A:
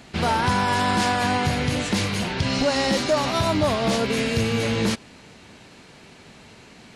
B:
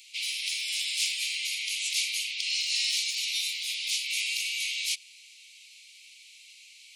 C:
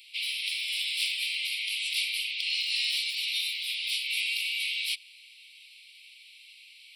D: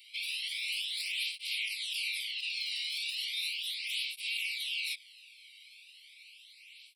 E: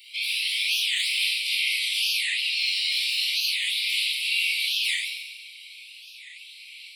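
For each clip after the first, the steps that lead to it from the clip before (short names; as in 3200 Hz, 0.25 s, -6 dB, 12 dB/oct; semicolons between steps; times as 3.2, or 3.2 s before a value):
steep high-pass 2200 Hz 96 dB/oct; high shelf 9900 Hz +7.5 dB
fixed phaser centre 2900 Hz, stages 4; gain +2 dB
limiter -23.5 dBFS, peak gain reduction 8 dB; tape flanging out of phase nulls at 0.36 Hz, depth 1.2 ms
reverb RT60 1.5 s, pre-delay 16 ms, DRR -4 dB; record warp 45 rpm, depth 250 cents; gain +6 dB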